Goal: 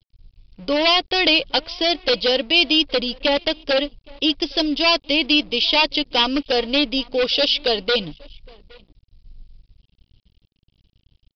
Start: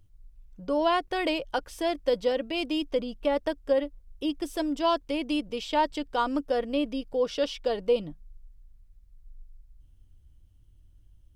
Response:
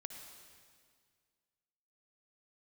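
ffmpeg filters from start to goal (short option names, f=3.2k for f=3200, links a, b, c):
-filter_complex "[0:a]acontrast=40,aeval=exprs='0.168*(abs(mod(val(0)/0.168+3,4)-2)-1)':c=same,asplit=2[a][b];[b]adelay=816.3,volume=-23dB,highshelf=f=4k:g=-18.4[c];[a][c]amix=inputs=2:normalize=0,aeval=exprs='sgn(val(0))*max(abs(val(0))-0.00422,0)':c=same,aexciter=amount=2.8:drive=9.6:freq=2.4k,aresample=11025,aresample=44100,volume=2dB"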